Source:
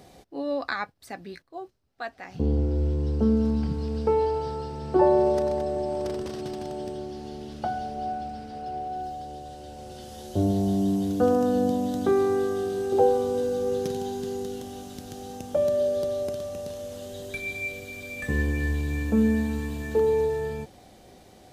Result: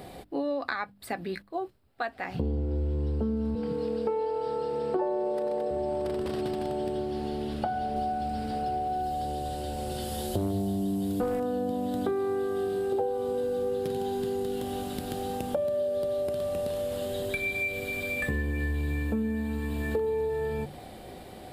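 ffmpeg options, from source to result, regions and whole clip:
ffmpeg -i in.wav -filter_complex "[0:a]asettb=1/sr,asplit=3[link_01][link_02][link_03];[link_01]atrim=end=3.554[link_04];[link_02]atrim=start=3.55:end=5.71,asetpts=PTS-STARTPTS,afade=type=in:duration=0.004:curve=qsin,afade=type=out:start_time=2.156:duration=0.004:curve=qsin,highpass=210,aeval=exprs='val(0)+0.0282*sin(2*PI*480*n/s)':channel_layout=same[link_05];[link_03]atrim=start=5.706[link_06];[link_04][link_05]acrossfade=duration=0.004:curve1=hsin:curve2=qsin[link_07];[link_07][link_06]acrossfade=duration=0.004:curve1=qsin:curve2=hsin,asettb=1/sr,asplit=3[link_08][link_09][link_10];[link_08]atrim=end=7.964[link_11];[link_09]atrim=start=7.96:end=11.4,asetpts=PTS-STARTPTS,afade=type=in:duration=0.004:curve=qsin,afade=type=out:start_time=3.436:duration=0.004:curve=qsin,bass=frequency=250:gain=3,treble=frequency=4000:gain=7,aeval=exprs='clip(val(0),-1,0.15)':channel_layout=same[link_12];[link_10]atrim=start=11.396[link_13];[link_11][link_12]acrossfade=duration=0.004:curve1=hsin:curve2=qsin[link_14];[link_14][link_13]acrossfade=duration=0.004:curve1=qsin:curve2=hsin,equalizer=frequency=6100:width_type=o:width=0.45:gain=-15,bandreject=frequency=50:width_type=h:width=6,bandreject=frequency=100:width_type=h:width=6,bandreject=frequency=150:width_type=h:width=6,bandreject=frequency=200:width_type=h:width=6,bandreject=frequency=250:width_type=h:width=6,bandreject=frequency=300:width_type=h:width=6,acompressor=threshold=-35dB:ratio=6,volume=7.5dB" out.wav

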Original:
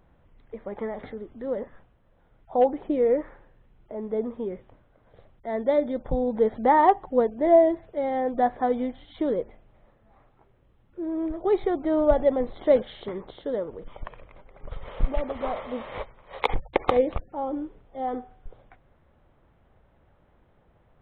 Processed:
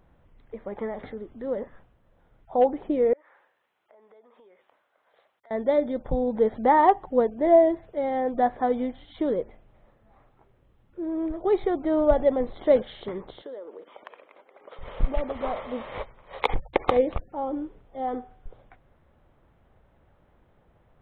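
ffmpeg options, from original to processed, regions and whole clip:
ffmpeg -i in.wav -filter_complex "[0:a]asettb=1/sr,asplit=3[link_01][link_02][link_03];[link_01]atrim=end=3.134[link_04];[link_02]atrim=start=3.13:end=5.51,asetpts=PTS-STARTPTS,afade=type=in:duration=0.004:curve=qsin,afade=type=out:start_time=2.376:duration=0.004:curve=qsin,highpass=840,acompressor=threshold=-53dB:ratio=6:attack=3.2:release=140:knee=1:detection=peak[link_05];[link_03]atrim=start=5.506[link_06];[link_04][link_05]acrossfade=duration=0.004:curve1=hsin:curve2=qsin[link_07];[link_07][link_06]acrossfade=duration=0.004:curve1=qsin:curve2=hsin,asettb=1/sr,asplit=3[link_08][link_09][link_10];[link_08]atrim=end=13.424[link_11];[link_09]atrim=start=13.42:end=14.79,asetpts=PTS-STARTPTS,afade=type=in:duration=0.004:curve=qsin,afade=type=out:start_time=1.366:duration=0.004:curve=qsin,highpass=frequency=310:width=0.5412,highpass=frequency=310:width=1.3066,acompressor=threshold=-37dB:ratio=4:attack=3.2:release=140:knee=1:detection=peak[link_12];[link_10]atrim=start=14.786[link_13];[link_11][link_12]acrossfade=duration=0.004:curve1=hsin:curve2=qsin[link_14];[link_14][link_13]acrossfade=duration=0.004:curve1=qsin:curve2=hsin" out.wav

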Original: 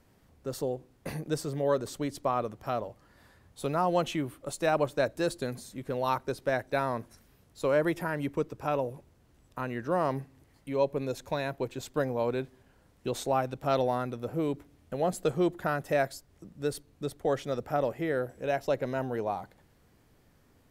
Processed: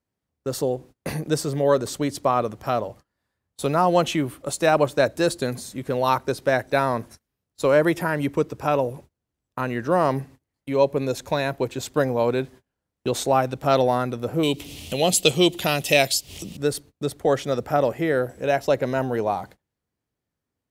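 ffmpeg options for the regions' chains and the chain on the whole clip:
ffmpeg -i in.wav -filter_complex "[0:a]asettb=1/sr,asplit=3[link_01][link_02][link_03];[link_01]atrim=end=14.434[link_04];[link_02]atrim=start=14.43:end=16.57,asetpts=PTS-STARTPTS,afade=type=in:duration=0.004:curve=qsin,afade=type=out:start_time=2.136:duration=0.004:curve=qsin,highshelf=frequency=2100:width_type=q:width=3:gain=10.5,acompressor=mode=upward:threshold=-34dB:ratio=2.5:attack=3.2:release=140:knee=2.83:detection=peak[link_05];[link_03]atrim=start=16.566[link_06];[link_04][link_05]acrossfade=duration=0.004:curve1=hsin:curve2=qsin[link_07];[link_07][link_06]acrossfade=duration=0.004:curve1=qsin:curve2=hsin,agate=range=-28dB:threshold=-50dB:ratio=16:detection=peak,highpass=45,equalizer=frequency=7000:width_type=o:width=2.1:gain=2.5,volume=8dB" out.wav

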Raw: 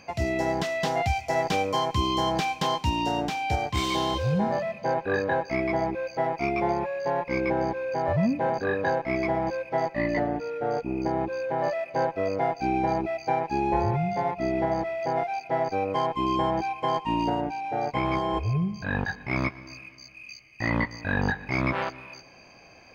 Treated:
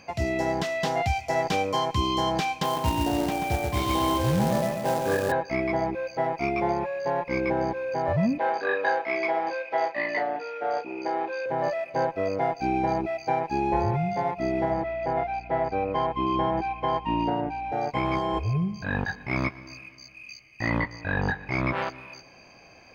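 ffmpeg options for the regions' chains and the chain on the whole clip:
ffmpeg -i in.wav -filter_complex "[0:a]asettb=1/sr,asplit=3[link_01][link_02][link_03];[link_01]atrim=end=2.634[link_04];[link_02]atrim=start=2.63:end=5.32,asetpts=PTS-STARTPTS,afade=type=in:duration=0.004:curve=qsin,afade=type=out:start_time=2.686:duration=0.004:curve=qsin,highshelf=frequency=3200:gain=-10,asplit=2[link_05][link_06];[link_06]adelay=135,lowpass=frequency=2300:poles=1,volume=-4dB,asplit=2[link_07][link_08];[link_08]adelay=135,lowpass=frequency=2300:poles=1,volume=0.54,asplit=2[link_09][link_10];[link_10]adelay=135,lowpass=frequency=2300:poles=1,volume=0.54,asplit=2[link_11][link_12];[link_12]adelay=135,lowpass=frequency=2300:poles=1,volume=0.54,asplit=2[link_13][link_14];[link_14]adelay=135,lowpass=frequency=2300:poles=1,volume=0.54,asplit=2[link_15][link_16];[link_16]adelay=135,lowpass=frequency=2300:poles=1,volume=0.54,asplit=2[link_17][link_18];[link_18]adelay=135,lowpass=frequency=2300:poles=1,volume=0.54[link_19];[link_05][link_07][link_09][link_11][link_13][link_15][link_17][link_19]amix=inputs=8:normalize=0,atrim=end_sample=118629,acrusher=bits=3:mode=log:mix=0:aa=0.000001[link_20];[link_03]atrim=start=5.316[link_21];[link_04][link_20]acrossfade=duration=0.004:curve1=hsin:curve2=qsin[link_22];[link_22][link_21]acrossfade=duration=0.004:curve1=qsin:curve2=hsin,asettb=1/sr,asplit=3[link_23][link_24][link_25];[link_23]atrim=end=8.384[link_26];[link_24]atrim=start=8.38:end=11.46,asetpts=PTS-STARTPTS,afade=type=in:duration=0.004:curve=qsin,afade=type=out:start_time=3.076:duration=0.004:curve=qsin,highpass=440,lowpass=3900,highshelf=frequency=2100:gain=8,asplit=2[link_27][link_28];[link_28]adelay=33,volume=-9dB[link_29];[link_27][link_29]amix=inputs=2:normalize=0,atrim=end_sample=135828[link_30];[link_25]atrim=start=11.456[link_31];[link_26][link_30]acrossfade=duration=0.004:curve1=hsin:curve2=qsin[link_32];[link_32][link_31]acrossfade=duration=0.004:curve1=qsin:curve2=hsin,asettb=1/sr,asplit=3[link_33][link_34][link_35];[link_33]atrim=end=14.714[link_36];[link_34]atrim=start=14.71:end=17.72,asetpts=PTS-STARTPTS,afade=type=in:duration=0.004:curve=qsin,afade=type=out:start_time=3.006:duration=0.004:curve=qsin,lowpass=3400,aeval=exprs='val(0)+0.00631*(sin(2*PI*60*n/s)+sin(2*PI*2*60*n/s)/2+sin(2*PI*3*60*n/s)/3+sin(2*PI*4*60*n/s)/4+sin(2*PI*5*60*n/s)/5)':channel_layout=same[link_37];[link_35]atrim=start=17.716[link_38];[link_36][link_37]acrossfade=duration=0.004:curve1=hsin:curve2=qsin[link_39];[link_39][link_38]acrossfade=duration=0.004:curve1=qsin:curve2=hsin,asettb=1/sr,asplit=3[link_40][link_41][link_42];[link_40]atrim=end=20.784[link_43];[link_41]atrim=start=20.78:end=21.77,asetpts=PTS-STARTPTS,afade=type=in:duration=0.004:curve=qsin,afade=type=out:start_time=0.986:duration=0.004:curve=qsin,highshelf=frequency=6900:gain=-9,bandreject=frequency=230:width=5.4[link_44];[link_42]atrim=start=21.766[link_45];[link_43][link_44]acrossfade=duration=0.004:curve1=hsin:curve2=qsin[link_46];[link_46][link_45]acrossfade=duration=0.004:curve1=qsin:curve2=hsin" out.wav

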